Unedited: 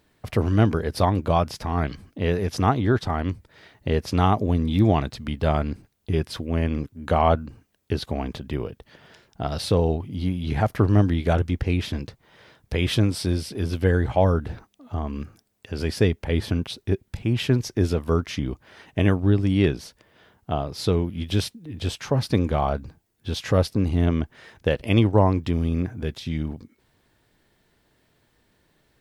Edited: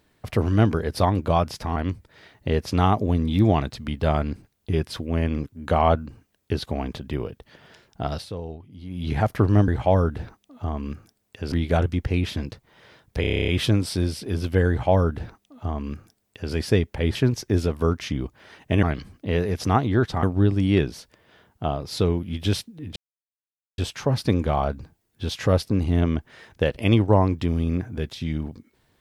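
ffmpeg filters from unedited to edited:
-filter_complex "[0:a]asplit=19[s0][s1][s2][s3][s4][s5][s6][s7][s8][s9][s10][s11][s12][s13][s14][s15][s16][s17][s18];[s0]atrim=end=1.762[s19];[s1]atrim=start=3.158:end=9.65,asetpts=PTS-STARTPTS,afade=t=out:st=6.372:d=0.12:silence=0.223872[s20];[s2]atrim=start=9.65:end=10.29,asetpts=PTS-STARTPTS,volume=0.224[s21];[s3]atrim=start=10.29:end=11.082,asetpts=PTS-STARTPTS,afade=t=in:d=0.12:silence=0.223872[s22];[s4]atrim=start=13.978:end=15.822[s23];[s5]atrim=start=11.078:end=12.802[s24];[s6]atrim=start=12.768:end=12.802[s25];[s7]atrim=start=12.768:end=12.802[s26];[s8]atrim=start=12.768:end=12.802[s27];[s9]atrim=start=12.768:end=12.802[s28];[s10]atrim=start=12.768:end=12.802[s29];[s11]atrim=start=12.768:end=12.802[s30];[s12]atrim=start=12.768:end=12.802[s31];[s13]atrim=start=12.768:end=12.802[s32];[s14]atrim=start=12.768:end=16.442[s33];[s15]atrim=start=17.418:end=19.102[s34];[s16]atrim=start=1.758:end=3.162[s35];[s17]atrim=start=19.098:end=21.83,asetpts=PTS-STARTPTS,afade=t=out:st=2.728:d=0.004:c=hsin,apad=pad_dur=0.82[s36];[s18]atrim=start=21.83,asetpts=PTS-STARTPTS,afade=t=in:d=0.004:c=hsin[s37];[s20][s21][s22]concat=n=3:v=0:a=1[s38];[s19][s38]acrossfade=d=0.004:c1=hsin:c2=hsin[s39];[s39][s23]acrossfade=d=0.004:c1=hsin:c2=hsin[s40];[s40][s24]acrossfade=d=0.004:c1=hsin:c2=hsin[s41];[s41][s25]acrossfade=d=0.004:c1=hsin:c2=hsin[s42];[s42][s26]acrossfade=d=0.004:c1=hsin:c2=hsin[s43];[s43][s27]acrossfade=d=0.004:c1=hsin:c2=hsin[s44];[s44][s28]acrossfade=d=0.004:c1=hsin:c2=hsin[s45];[s45][s29]acrossfade=d=0.004:c1=hsin:c2=hsin[s46];[s46][s30]acrossfade=d=0.004:c1=hsin:c2=hsin[s47];[s47][s31]acrossfade=d=0.004:c1=hsin:c2=hsin[s48];[s48][s32]acrossfade=d=0.004:c1=hsin:c2=hsin[s49];[s49][s33]acrossfade=d=0.004:c1=hsin:c2=hsin[s50];[s50][s34]acrossfade=d=0.004:c1=hsin:c2=hsin[s51];[s51][s35]acrossfade=d=0.004:c1=hsin:c2=hsin[s52];[s36][s37]concat=n=2:v=0:a=1[s53];[s52][s53]acrossfade=d=0.004:c1=hsin:c2=hsin"

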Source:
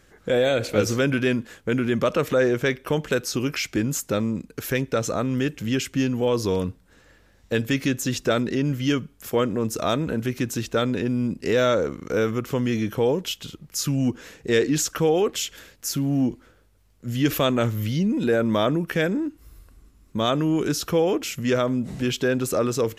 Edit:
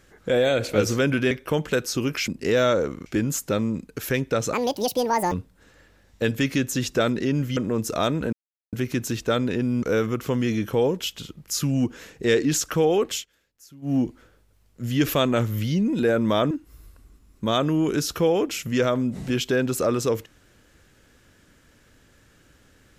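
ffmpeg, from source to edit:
-filter_complex "[0:a]asplit=12[s0][s1][s2][s3][s4][s5][s6][s7][s8][s9][s10][s11];[s0]atrim=end=1.312[s12];[s1]atrim=start=2.698:end=3.672[s13];[s2]atrim=start=11.288:end=12.072[s14];[s3]atrim=start=3.668:end=5.144[s15];[s4]atrim=start=5.14:end=6.62,asetpts=PTS-STARTPTS,asetrate=82908,aresample=44100,atrim=end_sample=34717,asetpts=PTS-STARTPTS[s16];[s5]atrim=start=6.616:end=8.872[s17];[s6]atrim=start=9.428:end=10.19,asetpts=PTS-STARTPTS,afade=t=out:st=0.758:d=0.004:c=hsin,apad=pad_dur=0.4[s18];[s7]atrim=start=10.19:end=11.292,asetpts=PTS-STARTPTS,afade=t=in:d=0.004:c=hsin[s19];[s8]atrim=start=12.068:end=15.5,asetpts=PTS-STARTPTS,afade=t=out:st=3.272:d=0.16:c=qsin:silence=0.0794328[s20];[s9]atrim=start=15.5:end=16.06,asetpts=PTS-STARTPTS,volume=0.0794[s21];[s10]atrim=start=16.06:end=18.752,asetpts=PTS-STARTPTS,afade=t=in:d=0.16:c=qsin:silence=0.0794328[s22];[s11]atrim=start=19.228[s23];[s12][s13]acrossfade=d=0.004:c1=hsin:c2=hsin[s24];[s24][s14]acrossfade=d=0.004:c1=hsin:c2=hsin[s25];[s25][s15]acrossfade=d=0.004:c1=hsin:c2=hsin[s26];[s26][s16]acrossfade=d=0.004:c1=hsin:c2=hsin[s27];[s27][s17]acrossfade=d=0.004:c1=hsin:c2=hsin[s28];[s18][s19]concat=n=2:v=0:a=1[s29];[s28][s29]acrossfade=d=0.004:c1=hsin:c2=hsin[s30];[s20][s21][s22]concat=n=3:v=0:a=1[s31];[s30][s31]acrossfade=d=0.004:c1=hsin:c2=hsin[s32];[s32][s23]acrossfade=d=0.004:c1=hsin:c2=hsin"

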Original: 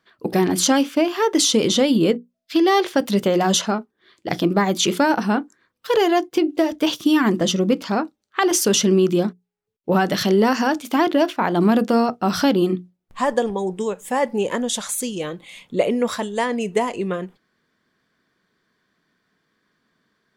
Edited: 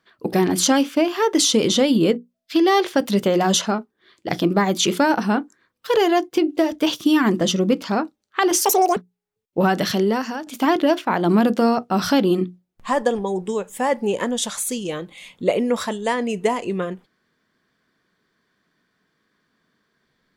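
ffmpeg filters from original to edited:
-filter_complex "[0:a]asplit=4[s0][s1][s2][s3];[s0]atrim=end=8.654[s4];[s1]atrim=start=8.65:end=9.28,asetpts=PTS-STARTPTS,asetrate=87759,aresample=44100,atrim=end_sample=13961,asetpts=PTS-STARTPTS[s5];[s2]atrim=start=9.276:end=10.78,asetpts=PTS-STARTPTS,afade=t=out:st=0.844:d=0.66:silence=0.211349[s6];[s3]atrim=start=10.78,asetpts=PTS-STARTPTS,afade=t=in:d=0.004:c=hsin:silence=0.211349[s7];[s4][s5]acrossfade=d=0.004:c1=hsin:c2=hsin[s8];[s6][s7]concat=n=2:v=0:a=1[s9];[s8][s9]acrossfade=d=0.004:c1=hsin:c2=hsin"

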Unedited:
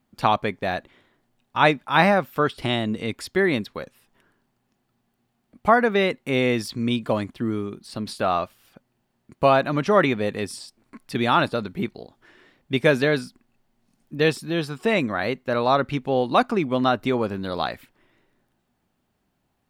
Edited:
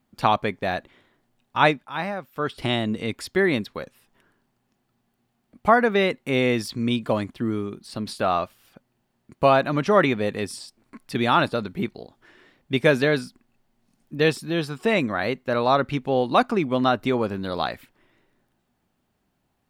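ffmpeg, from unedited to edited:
-filter_complex "[0:a]asplit=3[s0][s1][s2];[s0]atrim=end=1.94,asetpts=PTS-STARTPTS,afade=t=out:st=1.63:d=0.31:silence=0.266073[s3];[s1]atrim=start=1.94:end=2.31,asetpts=PTS-STARTPTS,volume=0.266[s4];[s2]atrim=start=2.31,asetpts=PTS-STARTPTS,afade=t=in:d=0.31:silence=0.266073[s5];[s3][s4][s5]concat=n=3:v=0:a=1"

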